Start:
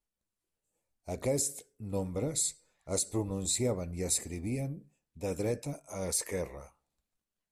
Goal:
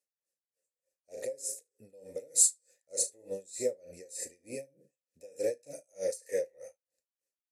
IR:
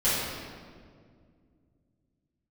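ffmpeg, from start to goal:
-filter_complex "[0:a]asettb=1/sr,asplit=3[s0][s1][s2];[s0]atrim=end=2.174[s3];[s1]atrim=start=2.17:end=2.92,asetpts=PTS-STARTPTS,afade=t=in:d=0.004:c=qsin,afade=t=out:st=0.746:d=0.004:c=qsin,highshelf=f=5600:g=11.5[s4];[s2]atrim=start=2.916[s5];[s3][s4]acrossfade=d=0.004:c1=hsin:c2=qsin[s6];[s6][s5]acrossfade=d=0.004:c1=qsin:c2=hsin,asplit=2[s7][s8];[s8]alimiter=limit=0.075:level=0:latency=1:release=307,volume=0.75[s9];[s7][s9]amix=inputs=2:normalize=0,aexciter=amount=12:drive=6.3:freq=4800,asplit=3[s10][s11][s12];[s10]bandpass=f=530:t=q:w=8,volume=1[s13];[s11]bandpass=f=1840:t=q:w=8,volume=0.501[s14];[s12]bandpass=f=2480:t=q:w=8,volume=0.355[s15];[s13][s14][s15]amix=inputs=3:normalize=0,asplit=2[s16][s17];[s17]aecho=0:1:36|74:0.316|0.178[s18];[s16][s18]amix=inputs=2:normalize=0,aeval=exprs='val(0)*pow(10,-27*(0.5-0.5*cos(2*PI*3.3*n/s))/20)':c=same,volume=2.11"

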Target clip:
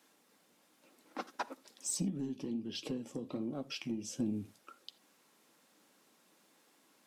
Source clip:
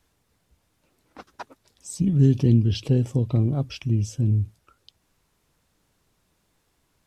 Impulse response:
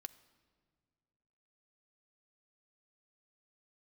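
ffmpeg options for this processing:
-filter_complex "[0:a]highpass=f=210:w=0.5412,highpass=f=210:w=1.3066,acompressor=threshold=0.0224:ratio=12,aeval=exprs='0.0708*(cos(1*acos(clip(val(0)/0.0708,-1,1)))-cos(1*PI/2))+0.00316*(cos(5*acos(clip(val(0)/0.0708,-1,1)))-cos(5*PI/2))':c=same,asplit=3[s0][s1][s2];[s0]afade=t=out:st=2.09:d=0.02[s3];[s1]flanger=delay=6.3:depth=8:regen=-65:speed=1.4:shape=triangular,afade=t=in:st=2.09:d=0.02,afade=t=out:st=4.18:d=0.02[s4];[s2]afade=t=in:st=4.18:d=0.02[s5];[s3][s4][s5]amix=inputs=3:normalize=0[s6];[1:a]atrim=start_sample=2205,afade=t=out:st=0.14:d=0.01,atrim=end_sample=6615[s7];[s6][s7]afir=irnorm=-1:irlink=0,volume=2"

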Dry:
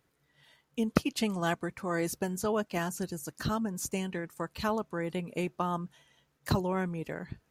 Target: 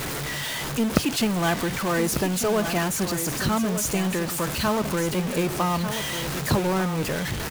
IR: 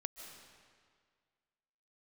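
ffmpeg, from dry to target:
-af "aeval=exprs='val(0)+0.5*0.0398*sgn(val(0))':c=same,acrusher=bits=4:mode=log:mix=0:aa=0.000001,aecho=1:1:1195:0.335,volume=1.5"

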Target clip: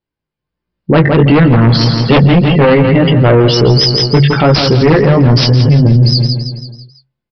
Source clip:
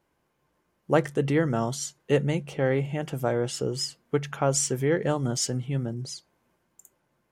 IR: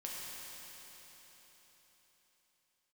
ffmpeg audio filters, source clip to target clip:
-filter_complex "[0:a]afftdn=nr=27:nf=-39,equalizer=f=840:w=0.31:g=-12.5,bandreject=f=66.39:t=h:w=4,bandreject=f=132.78:t=h:w=4,bandreject=f=199.17:t=h:w=4,bandreject=f=265.56:t=h:w=4,dynaudnorm=f=240:g=9:m=5.96,flanger=delay=16.5:depth=2.9:speed=1.3,aeval=exprs='0.668*sin(PI/2*5.01*val(0)/0.668)':c=same,asplit=2[s0][s1];[s1]aecho=0:1:165|330|495|660|825:0.316|0.155|0.0759|0.0372|0.0182[s2];[s0][s2]amix=inputs=2:normalize=0,aresample=11025,aresample=44100,alimiter=level_in=3.16:limit=0.891:release=50:level=0:latency=1,volume=0.891"

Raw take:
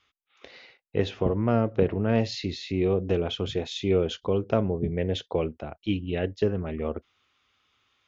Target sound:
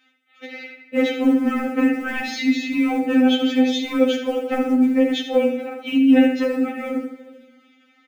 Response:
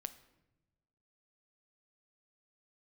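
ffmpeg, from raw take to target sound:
-filter_complex "[0:a]highpass=f=180:w=0.5412,highpass=f=180:w=1.3066,bandreject=f=60:t=h:w=6,bandreject=f=120:t=h:w=6,bandreject=f=180:t=h:w=6,bandreject=f=240:t=h:w=6,bandreject=f=300:t=h:w=6,bandreject=f=360:t=h:w=6,bandreject=f=420:t=h:w=6,bandreject=f=480:t=h:w=6,bandreject=f=540:t=h:w=6,asplit=2[s0][s1];[s1]adelay=78,lowpass=f=4700:p=1,volume=0.422,asplit=2[s2][s3];[s3]adelay=78,lowpass=f=4700:p=1,volume=0.38,asplit=2[s4][s5];[s5]adelay=78,lowpass=f=4700:p=1,volume=0.38,asplit=2[s6][s7];[s7]adelay=78,lowpass=f=4700:p=1,volume=0.38[s8];[s0][s2][s4][s6][s8]amix=inputs=5:normalize=0[s9];[1:a]atrim=start_sample=2205,asetrate=26901,aresample=44100[s10];[s9][s10]afir=irnorm=-1:irlink=0,adynamicequalizer=threshold=0.00562:dfrequency=540:dqfactor=7.1:tfrequency=540:tqfactor=7.1:attack=5:release=100:ratio=0.375:range=3:mode=cutabove:tftype=bell,asplit=2[s11][s12];[s12]acrusher=bits=4:mode=log:mix=0:aa=0.000001,volume=0.376[s13];[s11][s13]amix=inputs=2:normalize=0,asuperstop=centerf=1100:order=8:qfactor=5,asoftclip=type=tanh:threshold=0.211,equalizer=f=250:t=o:w=1:g=8,equalizer=f=2000:t=o:w=1:g=8,equalizer=f=4000:t=o:w=1:g=-6,afftfilt=real='re*3.46*eq(mod(b,12),0)':imag='im*3.46*eq(mod(b,12),0)':win_size=2048:overlap=0.75,volume=2.51"

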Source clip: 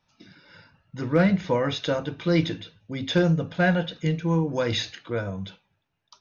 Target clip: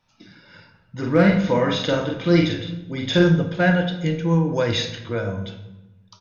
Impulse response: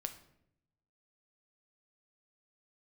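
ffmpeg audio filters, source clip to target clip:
-filter_complex "[0:a]asplit=3[s0][s1][s2];[s0]afade=t=out:st=1.02:d=0.02[s3];[s1]asplit=2[s4][s5];[s5]adelay=46,volume=0.708[s6];[s4][s6]amix=inputs=2:normalize=0,afade=t=in:st=1.02:d=0.02,afade=t=out:st=3.28:d=0.02[s7];[s2]afade=t=in:st=3.28:d=0.02[s8];[s3][s7][s8]amix=inputs=3:normalize=0[s9];[1:a]atrim=start_sample=2205,asetrate=30429,aresample=44100[s10];[s9][s10]afir=irnorm=-1:irlink=0,volume=1.41"

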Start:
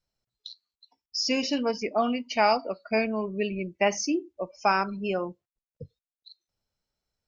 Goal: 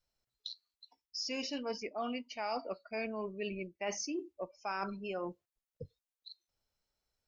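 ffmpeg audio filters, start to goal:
-af "equalizer=f=160:t=o:w=1.7:g=-5.5,areverse,acompressor=threshold=0.0178:ratio=5,areverse,volume=0.891"

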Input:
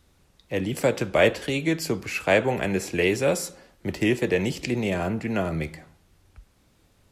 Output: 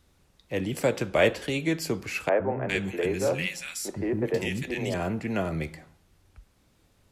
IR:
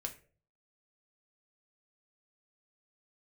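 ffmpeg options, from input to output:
-filter_complex "[0:a]asettb=1/sr,asplit=3[s0][s1][s2];[s0]atrim=end=2.294[s3];[s1]atrim=start=2.29:end=4.94,asetpts=PTS-STARTPTS,afade=t=in:d=0.004:c=qsin,afade=t=out:st=2.646:d=0.004:c=qsin,acrossover=split=270|1600[s4][s5][s6];[s4]adelay=110[s7];[s6]adelay=400[s8];[s7][s5][s8]amix=inputs=3:normalize=0,atrim=end_sample=116865[s9];[s2]atrim=start=4.936[s10];[s3][s9]acrossfade=d=0.004:c1=hsin:c2=qsin[s11];[s11][s10]acrossfade=d=0.004:c1=qsin:c2=hsin,volume=0.75"

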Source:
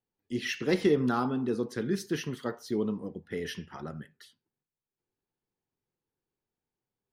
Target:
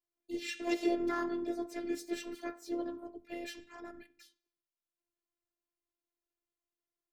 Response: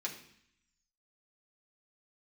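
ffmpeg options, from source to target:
-filter_complex "[0:a]asplit=2[s0][s1];[1:a]atrim=start_sample=2205,afade=t=out:st=0.36:d=0.01,atrim=end_sample=16317[s2];[s1][s2]afir=irnorm=-1:irlink=0,volume=0.2[s3];[s0][s3]amix=inputs=2:normalize=0,asplit=2[s4][s5];[s5]asetrate=58866,aresample=44100,atempo=0.749154,volume=0.891[s6];[s4][s6]amix=inputs=2:normalize=0,afftfilt=real='hypot(re,im)*cos(PI*b)':imag='0':win_size=512:overlap=0.75,volume=0.473"

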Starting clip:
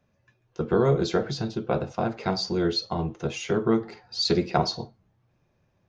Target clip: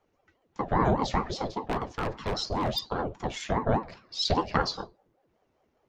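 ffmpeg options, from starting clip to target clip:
-filter_complex "[0:a]asettb=1/sr,asplit=3[s0][s1][s2];[s0]atrim=end=1.524[s3];[s1]atrim=start=1.52:end=2.81,asetpts=PTS-STARTPTS,afade=t=in:d=0.004:c=qsin,afade=t=out:st=1.286:d=0.004:c=qsin,aeval=exprs='0.106*(abs(mod(val(0)/0.106+3,4)-2)-1)':c=same[s4];[s2]atrim=start=2.806[s5];[s3][s4]acrossfade=d=0.004:c1=hsin:c2=qsin[s6];[s6][s5]acrossfade=d=0.004:c1=qsin:c2=hsin,aeval=exprs='val(0)*sin(2*PI*440*n/s+440*0.55/5*sin(2*PI*5*n/s))':c=same"

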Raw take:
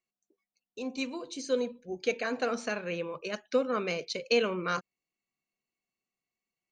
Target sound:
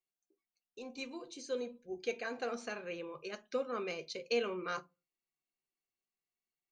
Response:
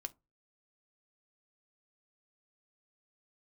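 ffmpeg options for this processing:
-filter_complex "[1:a]atrim=start_sample=2205[s0];[0:a][s0]afir=irnorm=-1:irlink=0,volume=0.596"

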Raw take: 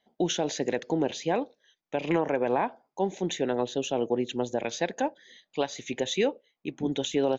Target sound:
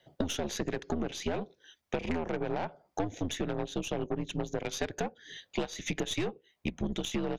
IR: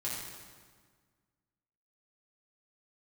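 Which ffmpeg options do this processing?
-af "afreqshift=-84,aeval=exprs='0.2*(cos(1*acos(clip(val(0)/0.2,-1,1)))-cos(1*PI/2))+0.0251*(cos(6*acos(clip(val(0)/0.2,-1,1)))-cos(6*PI/2))':c=same,acompressor=threshold=0.0126:ratio=6,volume=2.51"

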